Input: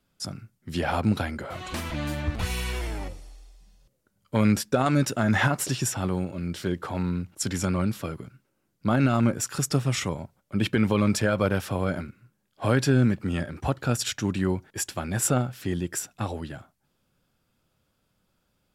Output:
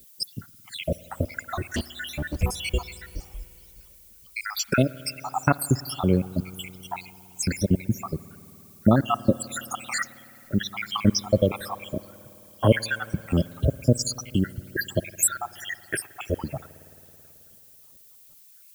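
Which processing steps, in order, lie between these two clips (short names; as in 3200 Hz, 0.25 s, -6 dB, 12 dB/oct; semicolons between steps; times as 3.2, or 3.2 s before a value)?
random spectral dropouts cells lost 82%; reverb removal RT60 1.2 s; in parallel at 0 dB: compressor, threshold -37 dBFS, peak gain reduction 17 dB; 1.59–2.43 on the sum: hard clip -28 dBFS, distortion -26 dB; tremolo 4.4 Hz, depth 45%; added noise violet -60 dBFS; on a send at -18 dB: reverb RT60 3.3 s, pre-delay 54 ms; on the sum: gain +7.5 dB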